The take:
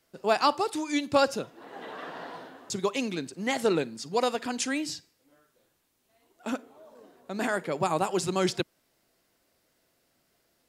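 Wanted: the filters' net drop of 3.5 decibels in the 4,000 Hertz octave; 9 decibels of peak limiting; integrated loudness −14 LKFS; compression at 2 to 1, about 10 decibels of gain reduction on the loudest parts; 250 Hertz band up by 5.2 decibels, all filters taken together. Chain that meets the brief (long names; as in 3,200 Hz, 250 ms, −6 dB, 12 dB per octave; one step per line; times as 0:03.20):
parametric band 250 Hz +6.5 dB
parametric band 4,000 Hz −4.5 dB
downward compressor 2 to 1, threshold −36 dBFS
level +24.5 dB
brickwall limiter −3 dBFS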